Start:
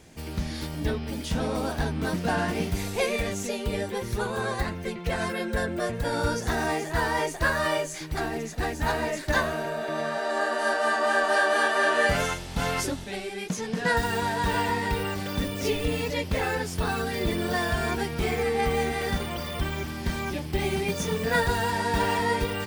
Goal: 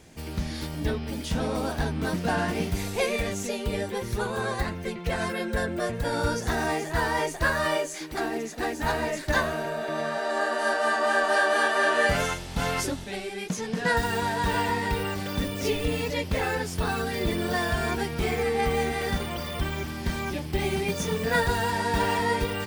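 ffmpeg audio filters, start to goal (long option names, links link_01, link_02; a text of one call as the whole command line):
ffmpeg -i in.wav -filter_complex "[0:a]asettb=1/sr,asplit=3[link_01][link_02][link_03];[link_01]atrim=end=7.764[link_04];[link_02]atrim=start=7.76:end=8.84,asetpts=PTS-STARTPTS,afade=type=in:duration=0.004:curve=qsin,afade=type=out:start_time=1.076:duration=0.004:curve=qsin,lowshelf=frequency=180:width_type=q:width=1.5:gain=-10.5[link_05];[link_03]atrim=start=8.836[link_06];[link_04][link_05]acrossfade=duration=0.004:curve1=hsin:curve2=qsin[link_07];[link_07][link_06]acrossfade=duration=0.004:curve1=qsin:curve2=hsin" out.wav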